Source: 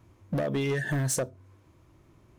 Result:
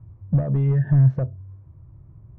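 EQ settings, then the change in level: LPF 1100 Hz 12 dB/oct; air absorption 230 m; resonant low shelf 190 Hz +13 dB, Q 1.5; 0.0 dB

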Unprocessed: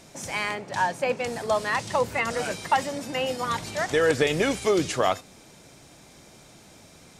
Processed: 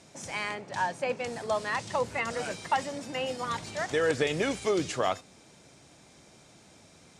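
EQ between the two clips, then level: HPF 54 Hz; LPF 10000 Hz 24 dB/oct; -5.0 dB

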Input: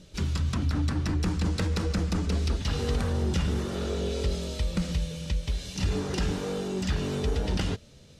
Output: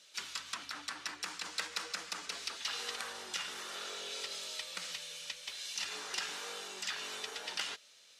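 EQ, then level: HPF 1300 Hz 12 dB/oct; 0.0 dB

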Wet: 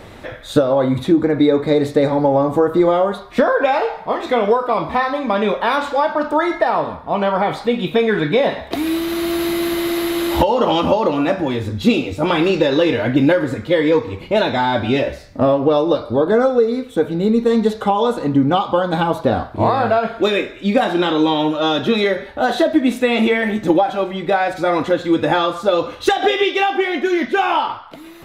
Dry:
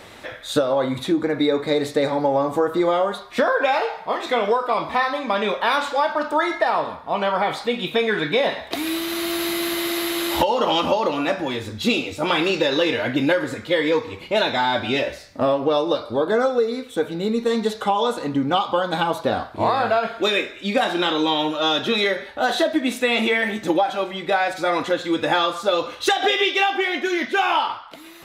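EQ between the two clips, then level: tilt -2.5 dB/oct; high shelf 11000 Hz +8.5 dB; +2.5 dB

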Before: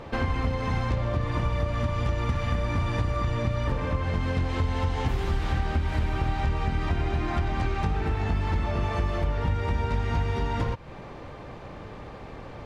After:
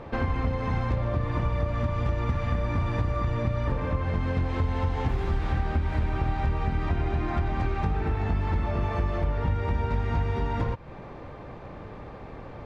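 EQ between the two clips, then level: high shelf 3800 Hz -11.5 dB; notch 3000 Hz, Q 22; 0.0 dB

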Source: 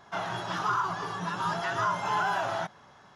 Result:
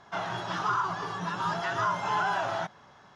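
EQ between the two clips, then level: LPF 7700 Hz 12 dB/oct; 0.0 dB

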